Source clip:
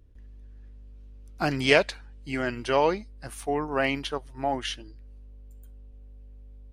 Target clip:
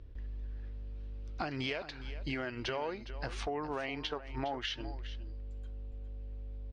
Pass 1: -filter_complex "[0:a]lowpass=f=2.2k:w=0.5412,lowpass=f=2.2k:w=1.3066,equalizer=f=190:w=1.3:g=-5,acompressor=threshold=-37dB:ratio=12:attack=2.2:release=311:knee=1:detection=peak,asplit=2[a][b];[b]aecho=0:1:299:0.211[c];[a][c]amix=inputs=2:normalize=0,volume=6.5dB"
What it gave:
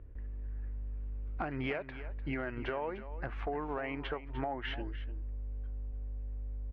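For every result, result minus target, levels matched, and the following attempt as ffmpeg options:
4000 Hz band -8.5 dB; echo 0.112 s early
-filter_complex "[0:a]lowpass=f=5k:w=0.5412,lowpass=f=5k:w=1.3066,equalizer=f=190:w=1.3:g=-5,acompressor=threshold=-37dB:ratio=12:attack=2.2:release=311:knee=1:detection=peak,asplit=2[a][b];[b]aecho=0:1:299:0.211[c];[a][c]amix=inputs=2:normalize=0,volume=6.5dB"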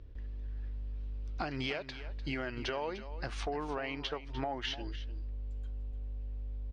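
echo 0.112 s early
-filter_complex "[0:a]lowpass=f=5k:w=0.5412,lowpass=f=5k:w=1.3066,equalizer=f=190:w=1.3:g=-5,acompressor=threshold=-37dB:ratio=12:attack=2.2:release=311:knee=1:detection=peak,asplit=2[a][b];[b]aecho=0:1:411:0.211[c];[a][c]amix=inputs=2:normalize=0,volume=6.5dB"

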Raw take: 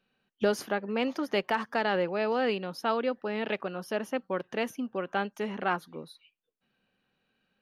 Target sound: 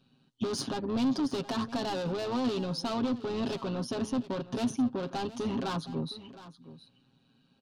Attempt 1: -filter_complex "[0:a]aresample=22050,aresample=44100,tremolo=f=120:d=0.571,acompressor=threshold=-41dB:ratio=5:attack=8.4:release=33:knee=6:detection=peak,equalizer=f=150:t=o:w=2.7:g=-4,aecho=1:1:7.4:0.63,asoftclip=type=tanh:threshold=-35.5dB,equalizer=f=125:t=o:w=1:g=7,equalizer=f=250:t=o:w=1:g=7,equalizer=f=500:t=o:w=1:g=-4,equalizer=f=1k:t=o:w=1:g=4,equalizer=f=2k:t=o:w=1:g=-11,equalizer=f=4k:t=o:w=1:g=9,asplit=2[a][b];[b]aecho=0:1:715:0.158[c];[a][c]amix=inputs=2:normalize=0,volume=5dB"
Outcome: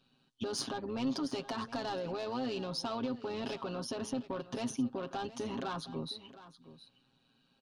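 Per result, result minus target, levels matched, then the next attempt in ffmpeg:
compressor: peak gain reduction +9 dB; 125 Hz band -2.5 dB
-filter_complex "[0:a]aresample=22050,aresample=44100,tremolo=f=120:d=0.571,acompressor=threshold=-30dB:ratio=5:attack=8.4:release=33:knee=6:detection=peak,equalizer=f=150:t=o:w=2.7:g=-4,aecho=1:1:7.4:0.63,asoftclip=type=tanh:threshold=-35.5dB,equalizer=f=125:t=o:w=1:g=7,equalizer=f=250:t=o:w=1:g=7,equalizer=f=500:t=o:w=1:g=-4,equalizer=f=1k:t=o:w=1:g=4,equalizer=f=2k:t=o:w=1:g=-11,equalizer=f=4k:t=o:w=1:g=9,asplit=2[a][b];[b]aecho=0:1:715:0.158[c];[a][c]amix=inputs=2:normalize=0,volume=5dB"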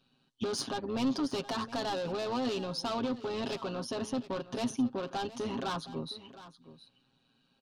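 125 Hz band -3.0 dB
-filter_complex "[0:a]aresample=22050,aresample=44100,tremolo=f=120:d=0.571,acompressor=threshold=-30dB:ratio=5:attack=8.4:release=33:knee=6:detection=peak,equalizer=f=150:t=o:w=2.7:g=4,aecho=1:1:7.4:0.63,asoftclip=type=tanh:threshold=-35.5dB,equalizer=f=125:t=o:w=1:g=7,equalizer=f=250:t=o:w=1:g=7,equalizer=f=500:t=o:w=1:g=-4,equalizer=f=1k:t=o:w=1:g=4,equalizer=f=2k:t=o:w=1:g=-11,equalizer=f=4k:t=o:w=1:g=9,asplit=2[a][b];[b]aecho=0:1:715:0.158[c];[a][c]amix=inputs=2:normalize=0,volume=5dB"

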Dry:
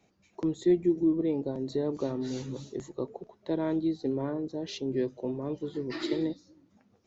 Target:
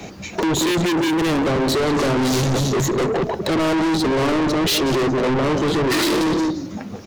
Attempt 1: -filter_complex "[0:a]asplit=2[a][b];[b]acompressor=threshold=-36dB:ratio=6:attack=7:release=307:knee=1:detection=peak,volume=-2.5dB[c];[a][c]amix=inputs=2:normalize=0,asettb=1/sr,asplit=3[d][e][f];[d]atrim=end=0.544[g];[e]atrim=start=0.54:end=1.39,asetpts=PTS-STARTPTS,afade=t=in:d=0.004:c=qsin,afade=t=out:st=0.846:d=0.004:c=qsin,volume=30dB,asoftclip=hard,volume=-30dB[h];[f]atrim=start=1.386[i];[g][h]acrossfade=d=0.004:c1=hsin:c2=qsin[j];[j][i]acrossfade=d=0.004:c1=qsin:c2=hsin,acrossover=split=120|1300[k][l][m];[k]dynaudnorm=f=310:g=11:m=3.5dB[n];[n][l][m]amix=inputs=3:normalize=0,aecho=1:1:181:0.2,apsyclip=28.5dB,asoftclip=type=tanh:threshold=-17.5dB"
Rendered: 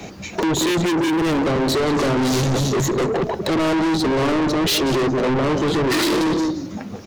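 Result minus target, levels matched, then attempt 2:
compressor: peak gain reduction +9 dB
-filter_complex "[0:a]asplit=2[a][b];[b]acompressor=threshold=-25dB:ratio=6:attack=7:release=307:knee=1:detection=peak,volume=-2.5dB[c];[a][c]amix=inputs=2:normalize=0,asettb=1/sr,asplit=3[d][e][f];[d]atrim=end=0.544[g];[e]atrim=start=0.54:end=1.39,asetpts=PTS-STARTPTS,afade=t=in:d=0.004:c=qsin,afade=t=out:st=0.846:d=0.004:c=qsin,volume=30dB,asoftclip=hard,volume=-30dB[h];[f]atrim=start=1.386[i];[g][h]acrossfade=d=0.004:c1=hsin:c2=qsin[j];[j][i]acrossfade=d=0.004:c1=qsin:c2=hsin,acrossover=split=120|1300[k][l][m];[k]dynaudnorm=f=310:g=11:m=3.5dB[n];[n][l][m]amix=inputs=3:normalize=0,aecho=1:1:181:0.2,apsyclip=28.5dB,asoftclip=type=tanh:threshold=-17.5dB"

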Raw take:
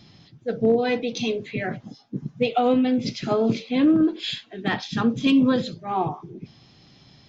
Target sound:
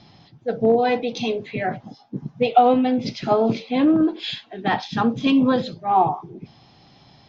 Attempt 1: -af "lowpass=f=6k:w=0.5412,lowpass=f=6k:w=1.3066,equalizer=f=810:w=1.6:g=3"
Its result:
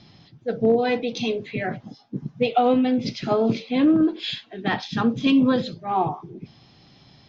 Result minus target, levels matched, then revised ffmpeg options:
1000 Hz band -4.0 dB
-af "lowpass=f=6k:w=0.5412,lowpass=f=6k:w=1.3066,equalizer=f=810:w=1.6:g=9.5"

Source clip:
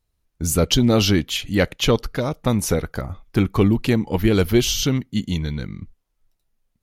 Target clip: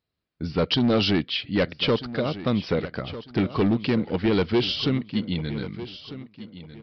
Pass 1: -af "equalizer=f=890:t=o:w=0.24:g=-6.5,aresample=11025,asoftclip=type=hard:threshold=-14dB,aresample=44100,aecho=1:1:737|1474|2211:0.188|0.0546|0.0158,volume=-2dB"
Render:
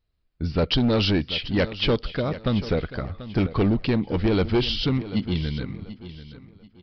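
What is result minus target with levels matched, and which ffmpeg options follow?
echo 0.511 s early; 125 Hz band +3.0 dB
-af "highpass=130,equalizer=f=890:t=o:w=0.24:g=-6.5,aresample=11025,asoftclip=type=hard:threshold=-14dB,aresample=44100,aecho=1:1:1248|2496|3744:0.188|0.0546|0.0158,volume=-2dB"

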